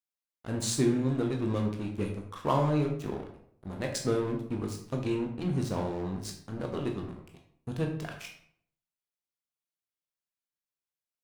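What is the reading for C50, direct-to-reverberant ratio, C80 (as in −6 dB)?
7.0 dB, 1.5 dB, 10.0 dB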